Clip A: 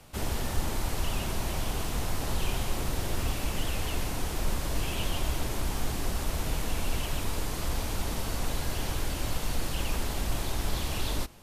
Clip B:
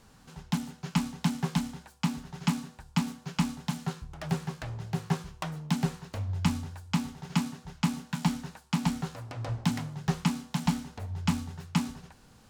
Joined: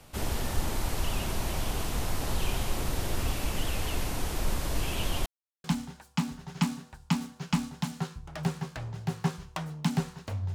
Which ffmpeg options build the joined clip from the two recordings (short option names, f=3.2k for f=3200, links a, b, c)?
-filter_complex "[0:a]apad=whole_dur=10.54,atrim=end=10.54,asplit=2[a][b];[a]atrim=end=5.26,asetpts=PTS-STARTPTS,afade=t=out:st=5.256:d=0.004:c=hsin[c];[b]atrim=start=5.26:end=5.64,asetpts=PTS-STARTPTS,volume=0[d];[1:a]atrim=start=1.5:end=6.4,asetpts=PTS-STARTPTS,afade=t=in:d=0.004:c=hsin[e];[c][d][e]concat=n=3:v=0:a=1"